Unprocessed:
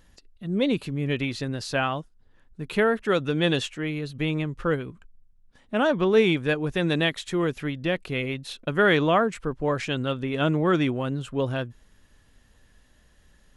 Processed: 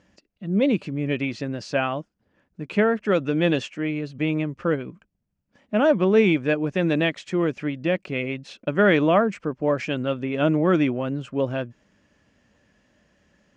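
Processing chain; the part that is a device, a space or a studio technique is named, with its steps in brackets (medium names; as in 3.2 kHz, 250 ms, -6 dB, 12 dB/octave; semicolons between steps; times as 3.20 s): car door speaker (cabinet simulation 98–6600 Hz, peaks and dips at 200 Hz +7 dB, 310 Hz +5 dB, 590 Hz +7 dB, 2.4 kHz +4 dB, 3.8 kHz -8 dB); trim -1 dB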